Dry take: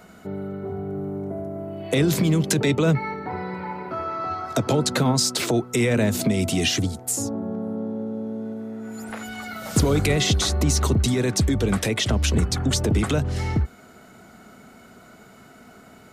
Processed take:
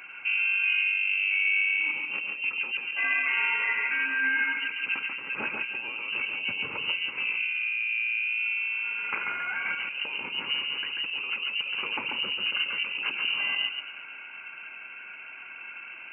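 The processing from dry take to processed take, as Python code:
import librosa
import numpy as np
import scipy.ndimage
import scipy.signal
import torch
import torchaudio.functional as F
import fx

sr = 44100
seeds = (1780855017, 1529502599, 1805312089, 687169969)

y = fx.self_delay(x, sr, depth_ms=0.21)
y = fx.notch_comb(y, sr, f0_hz=1100.0)
y = fx.over_compress(y, sr, threshold_db=-31.0, ratio=-1.0)
y = y + 10.0 ** (-4.0 / 20.0) * np.pad(y, (int(139 * sr / 1000.0), 0))[:len(y)]
y = fx.freq_invert(y, sr, carrier_hz=2900)
y = scipy.signal.sosfilt(scipy.signal.butter(2, 190.0, 'highpass', fs=sr, output='sos'), y)
y = fx.echo_split(y, sr, split_hz=2000.0, low_ms=168, high_ms=116, feedback_pct=52, wet_db=-15.5)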